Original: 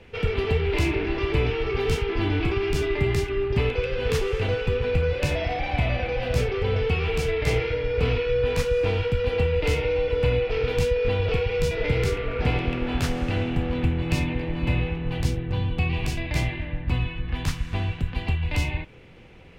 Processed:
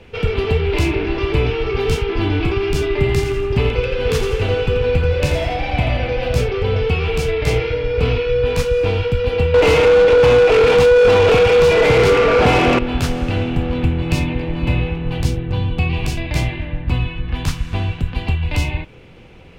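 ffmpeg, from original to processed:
-filter_complex "[0:a]asettb=1/sr,asplit=3[s0][s1][s2];[s0]atrim=end=2.884[s3];[s1]atrim=start=2.88:end=6.3,asetpts=PTS-STARTPTS,afade=t=in:d=0.004:c=qsin,afade=t=out:st=3.416:d=0.004:c=qsin,aecho=1:1:85|170|255|340|425:0.398|0.175|0.0771|0.0339|0.0149,atrim=end_sample=150822[s4];[s2]atrim=start=6.296[s5];[s3][s4]acrossfade=d=0.004:c1=hsin:c2=qsin[s6];[s6][s5]acrossfade=d=0.004:c1=qsin:c2=hsin,asettb=1/sr,asplit=3[s7][s8][s9];[s7]atrim=end=9.544[s10];[s8]atrim=start=9.54:end=12.79,asetpts=PTS-STARTPTS,afade=t=in:d=0.004:c=qsin,afade=t=out:st=3.246:d=0.004:c=qsin,asplit=2[s11][s12];[s12]highpass=f=720:p=1,volume=28.2,asoftclip=type=tanh:threshold=0.355[s13];[s11][s13]amix=inputs=2:normalize=0,lowpass=f=1300:p=1,volume=0.501[s14];[s9]atrim=start=12.786[s15];[s10][s14]acrossfade=d=0.004:c1=hsin:c2=qsin[s16];[s16][s15]acrossfade=d=0.004:c1=qsin:c2=hsin,equalizer=f=1900:w=3.6:g=-4,volume=2"

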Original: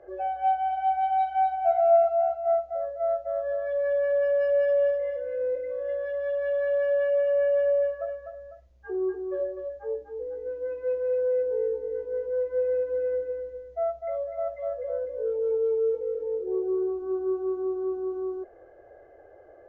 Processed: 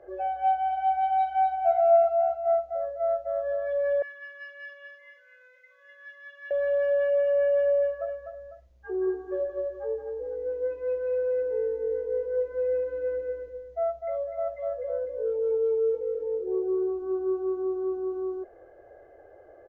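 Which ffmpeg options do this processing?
-filter_complex "[0:a]asettb=1/sr,asplit=3[s0][s1][s2];[s0]atrim=end=4.024[s3];[s1]atrim=start=4.02:end=6.51,asetpts=PTS-STARTPTS,afade=t=in:d=0.004:c=qsin,afade=t=out:st=2.486:d=0.004:c=qsin,highpass=f=1400:w=0.5412,highpass=f=1400:w=1.3066[s4];[s2]atrim=start=6.506[s5];[s3][s4]acrossfade=d=0.004:c1=hsin:c2=qsin[s6];[s6][s5]acrossfade=d=0.004:c1=qsin:c2=hsin,asplit=3[s7][s8][s9];[s7]afade=t=out:st=8.9:d=0.02[s10];[s8]aecho=1:1:174|348|522|696:0.473|0.147|0.0455|0.0141,afade=t=in:st=8.9:d=0.02,afade=t=out:st=13.48:d=0.02[s11];[s9]afade=t=in:st=13.48:d=0.02[s12];[s10][s11][s12]amix=inputs=3:normalize=0"

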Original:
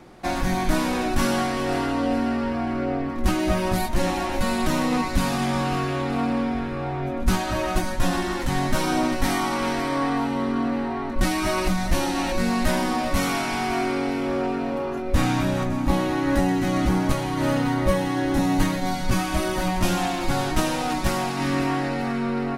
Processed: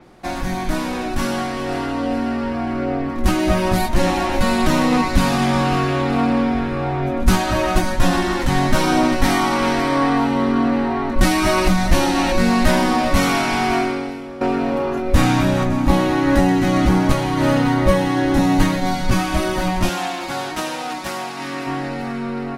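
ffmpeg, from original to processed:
-filter_complex "[0:a]asettb=1/sr,asplit=3[s0][s1][s2];[s0]atrim=end=19.894[s3];[s1]atrim=start=19.89:end=21.67,asetpts=PTS-STARTPTS,afade=t=in:d=0.004:c=qsin,afade=t=out:st=1.776:d=0.004:c=qsin,highpass=f=470:p=1[s4];[s2]atrim=start=21.666[s5];[s3][s4]acrossfade=d=0.004:c1=hsin:c2=qsin[s6];[s6][s5]acrossfade=d=0.004:c1=qsin:c2=hsin,asplit=2[s7][s8];[s7]atrim=end=14.41,asetpts=PTS-STARTPTS,afade=t=out:st=13.75:d=0.66:c=qua:silence=0.177828[s9];[s8]atrim=start=14.41,asetpts=PTS-STARTPTS,afade=t=in:d=0.004:c=hsin:silence=0.177828[s10];[s9][s10]concat=n=2:v=0:a=1,dynaudnorm=f=290:g=21:m=3.76,adynamicequalizer=threshold=0.0126:dfrequency=6400:dqfactor=0.7:tfrequency=6400:tqfactor=0.7:attack=5:release=100:ratio=0.375:range=2:mode=cutabove:tftype=highshelf"

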